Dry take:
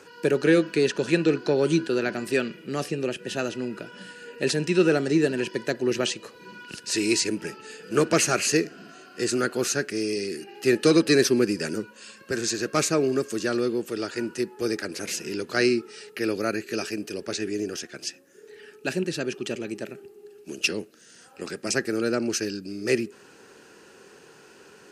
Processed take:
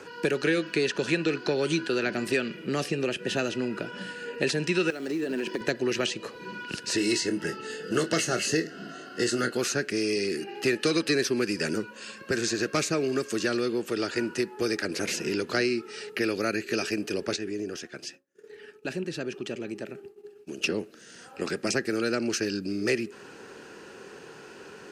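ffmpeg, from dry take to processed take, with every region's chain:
-filter_complex "[0:a]asettb=1/sr,asplit=3[s0][s1][s2];[s0]atrim=end=4.904[s3];[s1]atrim=start=4.9:end=5.61,asetpts=PTS-STARTPTS,afade=t=in:d=0.004:c=qsin,afade=t=out:st=0.706:d=0.004:c=qsin,lowshelf=f=150:t=q:w=1.5:g=-12.5,acrusher=bits=6:mode=log:mix=0:aa=0.000001,acompressor=threshold=0.0355:ratio=10:attack=3.2:release=140:knee=1:detection=peak[s4];[s2]atrim=start=5.606[s5];[s3][s4]acrossfade=d=0.004:c1=hsin:c2=qsin[s6];[s6][s5]acrossfade=d=0.004:c1=qsin:c2=hsin,asettb=1/sr,asplit=3[s7][s8][s9];[s7]atrim=end=6.964[s10];[s8]atrim=start=6.96:end=9.57,asetpts=PTS-STARTPTS,afade=t=in:d=0.004:c=qsin,afade=t=out:st=2.606:d=0.004:c=qsin,asuperstop=centerf=2400:order=12:qfactor=7.1,equalizer=f=1000:t=o:w=0.4:g=-6.5,asplit=2[s11][s12];[s12]adelay=25,volume=0.376[s13];[s11][s13]amix=inputs=2:normalize=0,atrim=end_sample=115101[s14];[s9]atrim=start=9.566[s15];[s10][s14]acrossfade=d=0.004:c1=hsin:c2=qsin[s16];[s16][s15]acrossfade=d=0.004:c1=qsin:c2=hsin,asettb=1/sr,asplit=3[s17][s18][s19];[s17]atrim=end=17.364[s20];[s18]atrim=start=17.36:end=20.62,asetpts=PTS-STARTPTS,afade=t=in:d=0.004:c=qsin,afade=t=out:st=3.256:d=0.004:c=qsin,agate=range=0.0224:threshold=0.00708:ratio=3:release=100:detection=peak,acompressor=threshold=0.00316:ratio=1.5:attack=3.2:release=140:knee=1:detection=peak[s21];[s19]atrim=start=20.616[s22];[s20][s21]acrossfade=d=0.004:c1=hsin:c2=qsin[s23];[s23][s22]acrossfade=d=0.004:c1=qsin:c2=hsin,highshelf=f=6300:g=-9.5,acrossover=split=700|1700[s24][s25][s26];[s24]acompressor=threshold=0.0251:ratio=4[s27];[s25]acompressor=threshold=0.00631:ratio=4[s28];[s26]acompressor=threshold=0.02:ratio=4[s29];[s27][s28][s29]amix=inputs=3:normalize=0,volume=1.88"

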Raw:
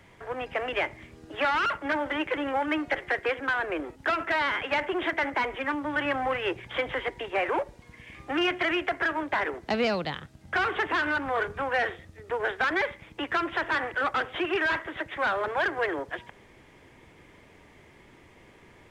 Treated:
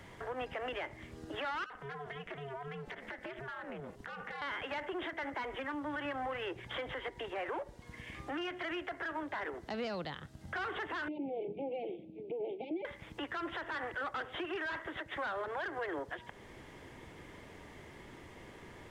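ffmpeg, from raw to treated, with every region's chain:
-filter_complex "[0:a]asettb=1/sr,asplit=3[s0][s1][s2];[s0]atrim=end=1.644[s3];[s1]atrim=start=1.64:end=4.42,asetpts=PTS-STARTPTS,afade=t=in:d=0.004:c=qsin,afade=t=out:st=2.776:d=0.004:c=qsin,acompressor=threshold=0.0141:ratio=5:attack=3.2:release=140:knee=1:detection=peak,aeval=exprs='val(0)*sin(2*PI*140*n/s)':c=same[s4];[s2]atrim=start=4.416[s5];[s3][s4]acrossfade=d=0.004:c1=hsin:c2=qsin[s6];[s6][s5]acrossfade=d=0.004:c1=qsin:c2=hsin,asettb=1/sr,asplit=3[s7][s8][s9];[s7]atrim=end=11.084[s10];[s8]atrim=start=11.08:end=12.85,asetpts=PTS-STARTPTS,afade=t=in:d=0.004:c=qsin,afade=t=out:st=1.766:d=0.004:c=qsin,acompressor=threshold=0.0355:ratio=2.5:attack=3.2:release=140:knee=1:detection=peak,asuperstop=centerf=1400:order=20:qfactor=0.98,highpass=f=160:w=0.5412,highpass=f=160:w=1.3066,equalizer=f=190:t=q:w=4:g=4,equalizer=f=330:t=q:w=4:g=10,equalizer=f=760:t=q:w=4:g=-9,equalizer=f=1100:t=q:w=4:g=-4,equalizer=f=1900:t=q:w=4:g=3,lowpass=f=2300:w=0.5412,lowpass=f=2300:w=1.3066[s11];[s9]atrim=start=12.846[s12];[s10][s11]acrossfade=d=0.004:c1=hsin:c2=qsin[s13];[s13][s12]acrossfade=d=0.004:c1=qsin:c2=hsin,equalizer=f=2400:t=o:w=0.25:g=-5.5,acompressor=threshold=0.00355:ratio=1.5,alimiter=level_in=2.82:limit=0.0631:level=0:latency=1:release=109,volume=0.355,volume=1.33"

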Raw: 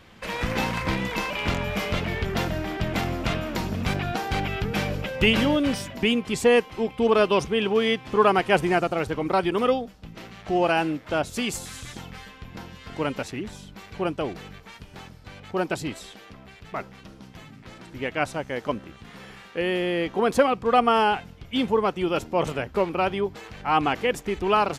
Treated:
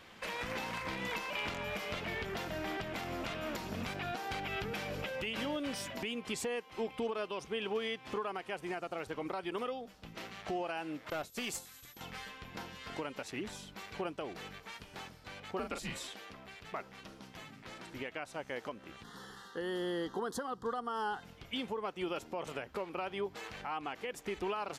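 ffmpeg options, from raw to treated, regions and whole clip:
-filter_complex "[0:a]asettb=1/sr,asplit=3[s0][s1][s2];[s0]atrim=end=11.104[s3];[s1]atrim=start=11.1:end=12.01,asetpts=PTS-STARTPTS,afade=t=in:d=0.004:c=qsin,afade=t=out:st=0.906:d=0.004:c=qsin,agate=range=0.0224:threshold=0.0316:ratio=3:release=100:detection=peak,aeval=exprs='clip(val(0),-1,0.0473)':c=same,aeval=exprs='val(0)+0.00178*sin(2*PI*12000*n/s)':c=same[s4];[s2]atrim=start=12.006[s5];[s3][s4]acrossfade=d=0.004:c1=hsin:c2=qsin[s6];[s6][s5]acrossfade=d=0.004:c1=qsin:c2=hsin,asettb=1/sr,asplit=3[s7][s8][s9];[s7]atrim=end=15.594[s10];[s8]atrim=start=15.59:end=16.08,asetpts=PTS-STARTPTS,afade=t=in:d=0.004:c=qsin,afade=t=out:st=0.486:d=0.004:c=qsin,afreqshift=-120,asplit=2[s11][s12];[s12]adelay=38,volume=0.473[s13];[s11][s13]amix=inputs=2:normalize=0,atrim=end_sample=21609[s14];[s9]atrim=start=16.076[s15];[s10][s14]acrossfade=d=0.004:c1=hsin:c2=qsin[s16];[s16][s15]acrossfade=d=0.004:c1=qsin:c2=hsin,asettb=1/sr,asplit=3[s17][s18][s19];[s17]atrim=end=19.034[s20];[s18]atrim=start=19.03:end=21.23,asetpts=PTS-STARTPTS,afade=t=in:d=0.004:c=qsin,afade=t=out:st=2.196:d=0.004:c=qsin,asuperstop=centerf=2400:order=4:qfactor=1.5,equalizer=f=620:w=3.4:g=-11.5[s21];[s19]atrim=start=21.226[s22];[s20][s21]acrossfade=d=0.004:c1=hsin:c2=qsin[s23];[s23][s22]acrossfade=d=0.004:c1=qsin:c2=hsin,lowshelf=f=230:g=-11.5,acompressor=threshold=0.0251:ratio=3,alimiter=level_in=1.19:limit=0.0631:level=0:latency=1:release=234,volume=0.841,volume=0.794"

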